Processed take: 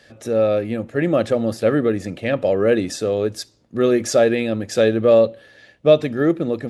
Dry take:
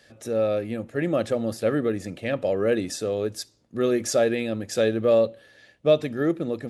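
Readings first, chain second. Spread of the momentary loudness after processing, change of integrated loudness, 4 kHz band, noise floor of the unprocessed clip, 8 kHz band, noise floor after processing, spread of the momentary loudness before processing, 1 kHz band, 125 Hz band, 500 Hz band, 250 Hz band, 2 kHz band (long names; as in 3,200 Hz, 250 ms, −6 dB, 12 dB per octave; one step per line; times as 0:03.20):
7 LU, +6.0 dB, +4.5 dB, −59 dBFS, +2.5 dB, −54 dBFS, 7 LU, +6.0 dB, +6.0 dB, +6.0 dB, +6.0 dB, +5.5 dB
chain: high-shelf EQ 7,200 Hz −7.5 dB
level +6 dB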